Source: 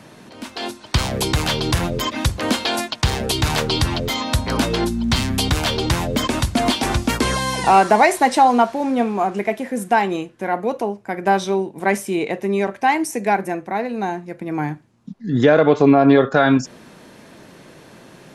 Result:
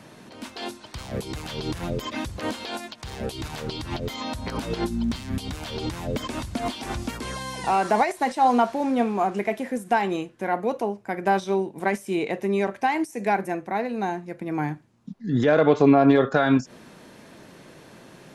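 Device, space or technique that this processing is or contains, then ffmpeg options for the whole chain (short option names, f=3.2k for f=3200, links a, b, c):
de-esser from a sidechain: -filter_complex "[0:a]asplit=2[a][b];[b]highpass=5.6k,apad=whole_len=809178[c];[a][c]sidechaincompress=threshold=-36dB:ratio=6:attack=0.85:release=98,volume=-3.5dB"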